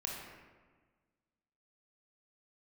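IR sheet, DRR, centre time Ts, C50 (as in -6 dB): -2.0 dB, 77 ms, 0.5 dB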